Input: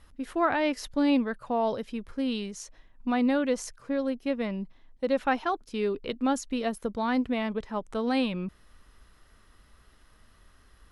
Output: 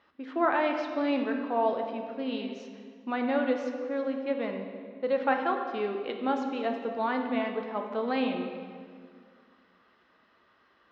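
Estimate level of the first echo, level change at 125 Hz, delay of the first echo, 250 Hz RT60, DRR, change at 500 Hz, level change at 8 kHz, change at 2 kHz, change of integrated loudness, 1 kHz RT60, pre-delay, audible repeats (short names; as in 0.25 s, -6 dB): none, n/a, none, 2.4 s, 3.0 dB, +0.5 dB, under -15 dB, 0.0 dB, -1.0 dB, 1.9 s, 3 ms, none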